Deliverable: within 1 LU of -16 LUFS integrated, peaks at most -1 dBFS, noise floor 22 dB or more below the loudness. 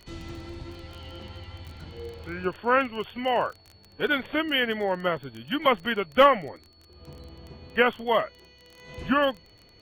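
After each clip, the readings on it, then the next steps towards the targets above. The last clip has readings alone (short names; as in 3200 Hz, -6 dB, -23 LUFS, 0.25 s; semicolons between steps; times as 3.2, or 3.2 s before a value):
ticks 21/s; steady tone 4400 Hz; tone level -57 dBFS; loudness -25.5 LUFS; peak -7.5 dBFS; loudness target -16.0 LUFS
-> de-click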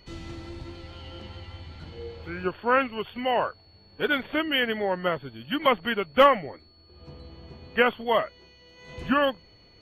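ticks 0/s; steady tone 4400 Hz; tone level -57 dBFS
-> notch 4400 Hz, Q 30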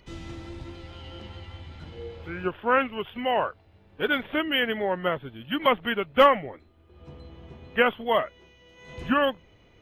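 steady tone none; loudness -25.5 LUFS; peak -7.5 dBFS; loudness target -16.0 LUFS
-> gain +9.5 dB; limiter -1 dBFS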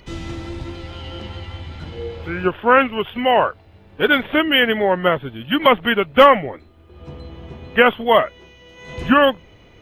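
loudness -16.5 LUFS; peak -1.0 dBFS; noise floor -48 dBFS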